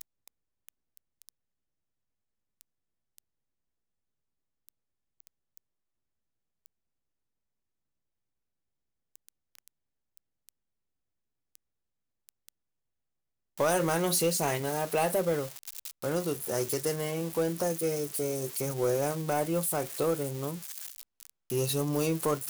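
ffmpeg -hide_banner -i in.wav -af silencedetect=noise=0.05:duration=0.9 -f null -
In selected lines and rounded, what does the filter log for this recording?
silence_start: 0.00
silence_end: 13.60 | silence_duration: 13.60
silence_start: 20.49
silence_end: 21.52 | silence_duration: 1.02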